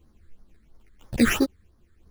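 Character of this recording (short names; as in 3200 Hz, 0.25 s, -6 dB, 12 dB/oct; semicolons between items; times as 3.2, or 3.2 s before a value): aliases and images of a low sample rate 4300 Hz, jitter 0%; phasing stages 8, 3 Hz, lowest notch 770–2700 Hz; tremolo saw down 1 Hz, depth 35%; a shimmering, thickened sound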